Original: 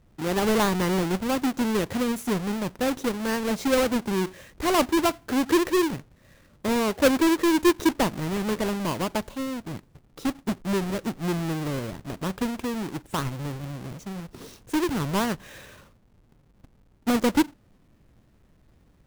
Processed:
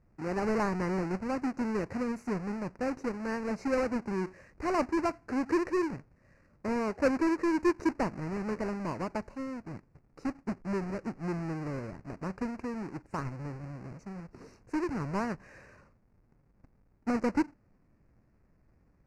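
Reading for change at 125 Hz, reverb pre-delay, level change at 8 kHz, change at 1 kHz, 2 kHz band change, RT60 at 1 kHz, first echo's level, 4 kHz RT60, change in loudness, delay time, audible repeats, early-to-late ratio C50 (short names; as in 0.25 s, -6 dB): -7.0 dB, none, -17.5 dB, -7.0 dB, -8.0 dB, none, none, none, -7.5 dB, none, none, none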